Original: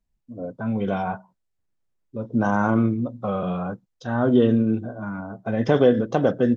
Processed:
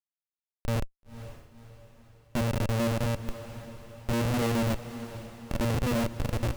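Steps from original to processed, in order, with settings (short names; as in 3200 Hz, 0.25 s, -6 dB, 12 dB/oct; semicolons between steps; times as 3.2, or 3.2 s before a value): tape stop at the end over 0.61 s; octave resonator A#, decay 0.53 s; Schmitt trigger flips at -34 dBFS; small resonant body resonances 570/2700 Hz, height 7 dB; on a send: diffused feedback echo 0.516 s, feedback 49%, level -13 dB; on the sum: gain +7.5 dB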